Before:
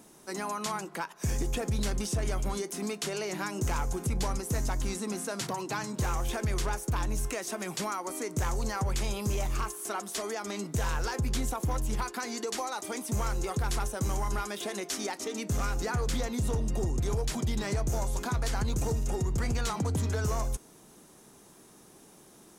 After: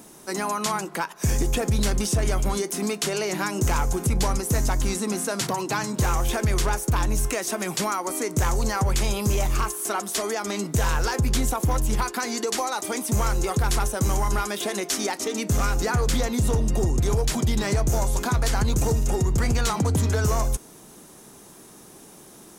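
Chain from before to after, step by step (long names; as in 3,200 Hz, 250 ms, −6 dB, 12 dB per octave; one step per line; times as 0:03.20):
high-shelf EQ 12,000 Hz +5 dB
level +7.5 dB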